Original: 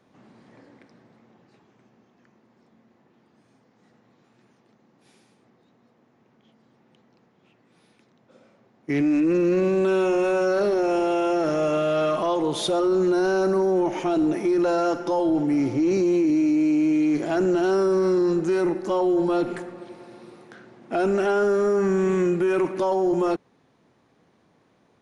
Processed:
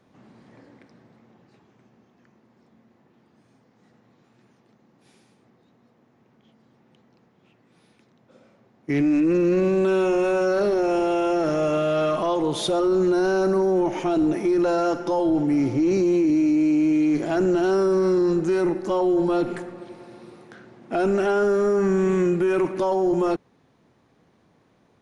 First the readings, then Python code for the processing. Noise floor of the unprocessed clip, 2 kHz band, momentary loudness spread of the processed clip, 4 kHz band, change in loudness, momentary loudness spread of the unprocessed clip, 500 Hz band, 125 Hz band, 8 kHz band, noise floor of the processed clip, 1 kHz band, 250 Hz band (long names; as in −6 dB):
−63 dBFS, 0.0 dB, 4 LU, 0.0 dB, +0.5 dB, 4 LU, +0.5 dB, +2.0 dB, 0.0 dB, −62 dBFS, 0.0 dB, +1.0 dB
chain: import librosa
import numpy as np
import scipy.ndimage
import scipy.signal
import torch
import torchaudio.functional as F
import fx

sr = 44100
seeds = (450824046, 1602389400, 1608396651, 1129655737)

y = fx.low_shelf(x, sr, hz=120.0, db=6.5)